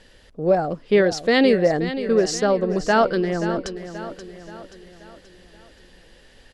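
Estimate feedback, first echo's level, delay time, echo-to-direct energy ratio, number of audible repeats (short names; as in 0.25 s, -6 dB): 48%, -11.5 dB, 0.529 s, -10.5 dB, 4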